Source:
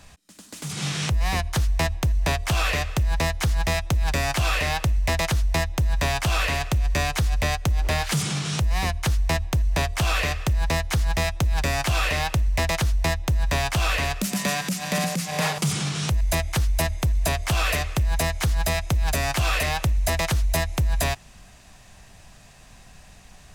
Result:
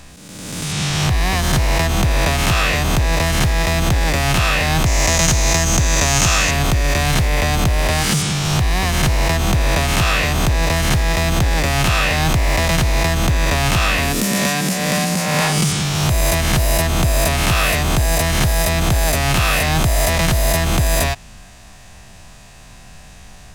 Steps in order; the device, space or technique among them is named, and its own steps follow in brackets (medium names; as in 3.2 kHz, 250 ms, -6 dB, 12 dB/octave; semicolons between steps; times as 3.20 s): reverse spectral sustain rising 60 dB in 1.48 s; 4.86–6.51 s: peaking EQ 6.5 kHz +13.5 dB 0.58 oct; parallel distortion (in parallel at -9 dB: hard clipper -20.5 dBFS, distortion -10 dB); on the sum: trim +2 dB